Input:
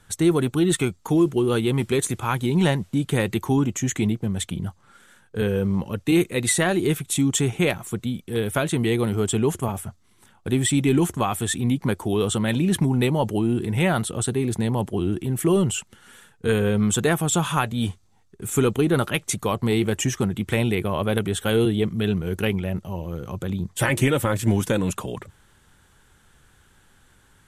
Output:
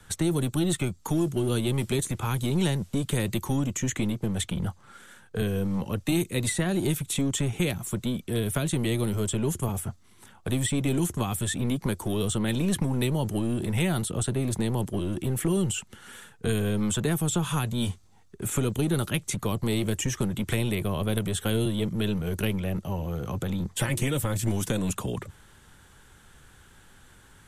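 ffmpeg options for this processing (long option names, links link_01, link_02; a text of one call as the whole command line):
ffmpeg -i in.wav -filter_complex "[0:a]acrossover=split=270|3800[link_01][link_02][link_03];[link_01]acompressor=threshold=-26dB:ratio=4[link_04];[link_02]acompressor=threshold=-36dB:ratio=4[link_05];[link_03]acompressor=threshold=-35dB:ratio=4[link_06];[link_04][link_05][link_06]amix=inputs=3:normalize=0,acrossover=split=420|1100|3600[link_07][link_08][link_09][link_10];[link_07]aeval=exprs='clip(val(0),-1,0.0299)':channel_layout=same[link_11];[link_11][link_08][link_09][link_10]amix=inputs=4:normalize=0,volume=3dB" out.wav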